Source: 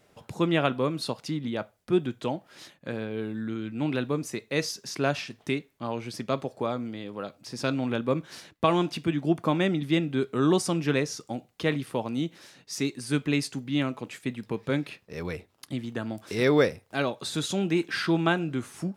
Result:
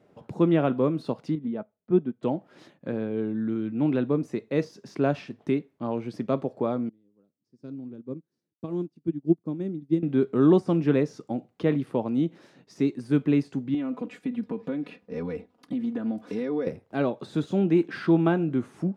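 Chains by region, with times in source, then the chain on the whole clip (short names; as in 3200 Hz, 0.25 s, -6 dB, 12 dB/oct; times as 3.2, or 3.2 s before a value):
1.35–2.23 tape spacing loss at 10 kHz 22 dB + comb 4.6 ms, depth 39% + upward expander, over -46 dBFS
6.89–10.03 band shelf 1400 Hz -12 dB 3 oct + upward expander 2.5:1, over -40 dBFS
13.74–16.67 high shelf 9200 Hz -4.5 dB + compressor 10:1, threshold -31 dBFS + comb 4.1 ms, depth 86%
whole clip: de-esser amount 85%; HPF 230 Hz 12 dB/oct; tilt -4.5 dB/oct; gain -1.5 dB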